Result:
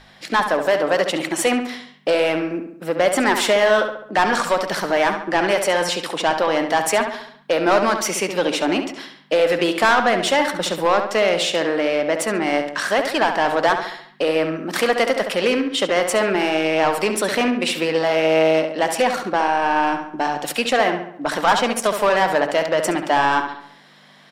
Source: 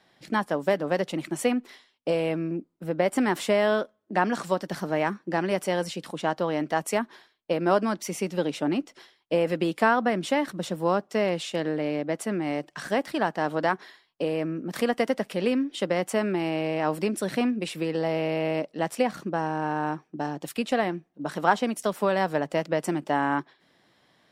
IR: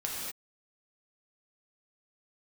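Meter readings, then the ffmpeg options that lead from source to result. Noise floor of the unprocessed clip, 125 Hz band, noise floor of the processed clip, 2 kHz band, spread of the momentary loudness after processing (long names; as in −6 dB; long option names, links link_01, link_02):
−67 dBFS, −1.0 dB, −48 dBFS, +10.5 dB, 6 LU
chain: -filter_complex "[0:a]lowshelf=frequency=400:gain=-4,asplit=2[link_01][link_02];[link_02]highpass=frequency=720:poles=1,volume=21dB,asoftclip=type=tanh:threshold=-6.5dB[link_03];[link_01][link_03]amix=inputs=2:normalize=0,lowpass=frequency=7400:poles=1,volume=-6dB,aeval=exprs='val(0)+0.00447*(sin(2*PI*50*n/s)+sin(2*PI*2*50*n/s)/2+sin(2*PI*3*50*n/s)/3+sin(2*PI*4*50*n/s)/4+sin(2*PI*5*50*n/s)/5)':channel_layout=same,bandreject=frequency=50:width_type=h:width=6,bandreject=frequency=100:width_type=h:width=6,asplit=2[link_04][link_05];[link_05]adelay=69,lowpass=frequency=3500:poles=1,volume=-7dB,asplit=2[link_06][link_07];[link_07]adelay=69,lowpass=frequency=3500:poles=1,volume=0.51,asplit=2[link_08][link_09];[link_09]adelay=69,lowpass=frequency=3500:poles=1,volume=0.51,asplit=2[link_10][link_11];[link_11]adelay=69,lowpass=frequency=3500:poles=1,volume=0.51,asplit=2[link_12][link_13];[link_13]adelay=69,lowpass=frequency=3500:poles=1,volume=0.51,asplit=2[link_14][link_15];[link_15]adelay=69,lowpass=frequency=3500:poles=1,volume=0.51[link_16];[link_06][link_08][link_10][link_12][link_14][link_16]amix=inputs=6:normalize=0[link_17];[link_04][link_17]amix=inputs=2:normalize=0"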